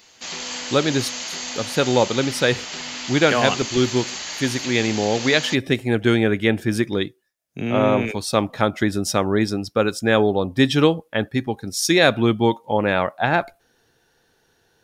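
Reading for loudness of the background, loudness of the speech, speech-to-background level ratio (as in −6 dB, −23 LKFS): −28.5 LKFS, −20.5 LKFS, 8.0 dB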